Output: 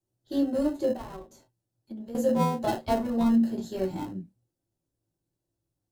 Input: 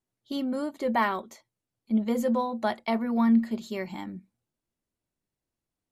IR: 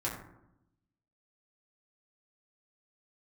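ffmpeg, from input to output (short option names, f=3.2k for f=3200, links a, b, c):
-filter_complex "[1:a]atrim=start_sample=2205,atrim=end_sample=3087[a];[0:a][a]afir=irnorm=-1:irlink=0,acrossover=split=200|970|3200[b][c][d][e];[d]acrusher=samples=38:mix=1:aa=0.000001[f];[b][c][f][e]amix=inputs=4:normalize=0,asettb=1/sr,asplit=3[g][h][i];[g]atrim=end=0.934[j];[h]atrim=start=0.93:end=2.15,asetpts=PTS-STARTPTS,afade=t=in:d=0.004:c=qsin,afade=t=out:st=1.216:d=0.004:c=qsin,acompressor=threshold=-38dB:ratio=6[k];[i]atrim=start=2.146[l];[j][k]acrossfade=d=0.004:c1=hsin:c2=qsin[m];[m][l]acrossfade=d=0.004:c1=qsin:c2=hsin"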